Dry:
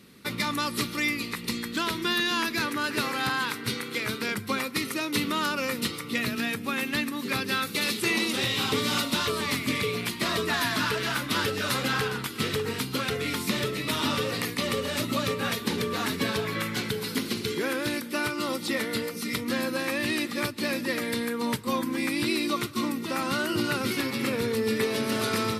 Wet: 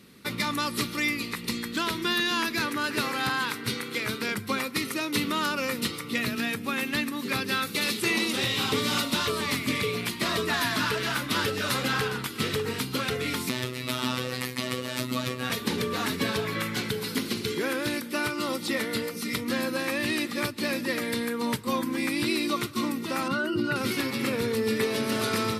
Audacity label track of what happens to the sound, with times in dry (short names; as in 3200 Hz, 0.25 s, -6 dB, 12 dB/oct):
13.490000	15.500000	robotiser 126 Hz
23.280000	23.760000	spectral contrast raised exponent 1.5